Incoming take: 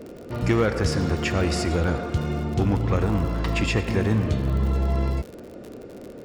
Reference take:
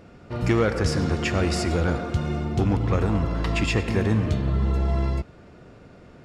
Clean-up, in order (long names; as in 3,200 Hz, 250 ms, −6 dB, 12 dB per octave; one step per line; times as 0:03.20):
click removal
noise reduction from a noise print 8 dB